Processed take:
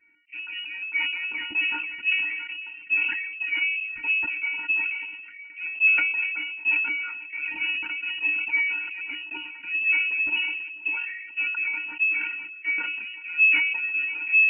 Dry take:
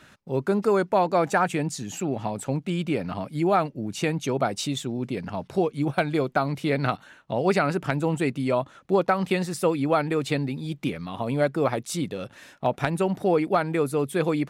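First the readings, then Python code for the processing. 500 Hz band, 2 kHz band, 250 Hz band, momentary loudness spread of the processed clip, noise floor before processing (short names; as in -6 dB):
under -35 dB, +12.0 dB, -24.0 dB, 12 LU, -54 dBFS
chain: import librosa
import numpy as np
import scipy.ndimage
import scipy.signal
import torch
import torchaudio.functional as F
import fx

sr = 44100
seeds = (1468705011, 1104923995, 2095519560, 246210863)

p1 = fx.tracing_dist(x, sr, depth_ms=0.31)
p2 = fx.highpass(p1, sr, hz=190.0, slope=6)
p3 = fx.peak_eq(p2, sr, hz=410.0, db=12.0, octaves=2.4)
p4 = fx.level_steps(p3, sr, step_db=18)
p5 = fx.env_phaser(p4, sr, low_hz=290.0, high_hz=1700.0, full_db=-15.0)
p6 = 10.0 ** (-14.5 / 20.0) * np.tanh(p5 / 10.0 ** (-14.5 / 20.0))
p7 = fx.stiff_resonator(p6, sr, f0_hz=300.0, decay_s=0.27, stiffness=0.03)
p8 = p7 + fx.echo_feedback(p7, sr, ms=491, feedback_pct=49, wet_db=-20, dry=0)
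p9 = fx.freq_invert(p8, sr, carrier_hz=2900)
p10 = fx.sustainer(p9, sr, db_per_s=40.0)
y = F.gain(torch.from_numpy(p10), 8.5).numpy()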